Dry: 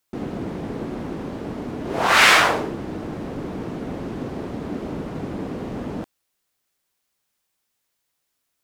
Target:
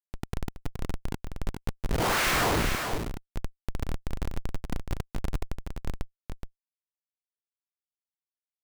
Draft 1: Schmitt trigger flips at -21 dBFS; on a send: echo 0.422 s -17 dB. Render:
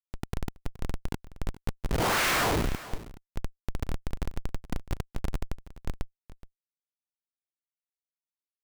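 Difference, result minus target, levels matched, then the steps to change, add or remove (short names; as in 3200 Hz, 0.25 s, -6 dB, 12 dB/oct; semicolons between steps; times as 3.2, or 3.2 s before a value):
echo-to-direct -11 dB
change: echo 0.422 s -6 dB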